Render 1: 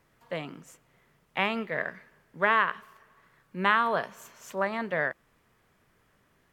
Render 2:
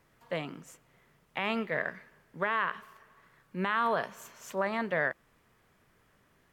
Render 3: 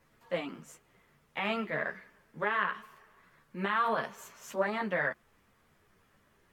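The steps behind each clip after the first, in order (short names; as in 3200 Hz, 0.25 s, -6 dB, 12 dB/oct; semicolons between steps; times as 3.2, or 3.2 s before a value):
limiter -18 dBFS, peak gain reduction 9.5 dB
ensemble effect; gain +2.5 dB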